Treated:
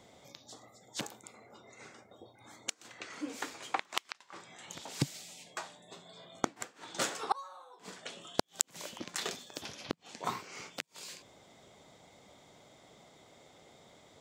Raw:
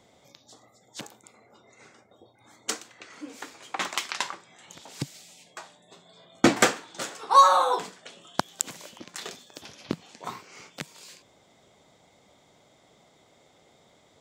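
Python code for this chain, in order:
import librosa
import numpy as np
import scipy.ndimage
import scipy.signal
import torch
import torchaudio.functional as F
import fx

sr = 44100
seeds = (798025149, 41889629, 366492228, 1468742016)

y = fx.gate_flip(x, sr, shuts_db=-17.0, range_db=-32)
y = y * librosa.db_to_amplitude(1.0)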